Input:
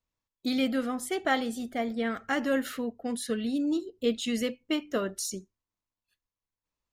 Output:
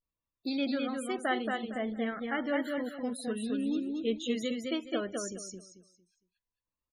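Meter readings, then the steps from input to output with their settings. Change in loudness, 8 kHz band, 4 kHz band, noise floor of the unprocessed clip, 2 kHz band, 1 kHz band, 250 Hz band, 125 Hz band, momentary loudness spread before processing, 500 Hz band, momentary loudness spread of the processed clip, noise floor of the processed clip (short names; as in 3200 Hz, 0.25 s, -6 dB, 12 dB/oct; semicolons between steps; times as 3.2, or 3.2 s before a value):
-3.0 dB, -6.0 dB, -4.0 dB, under -85 dBFS, -3.0 dB, -3.0 dB, -3.0 dB, n/a, 7 LU, -3.0 dB, 6 LU, under -85 dBFS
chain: feedback echo 0.218 s, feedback 27%, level -3.5 dB; vibrato 0.46 Hz 92 cents; loudest bins only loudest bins 64; gain -4.5 dB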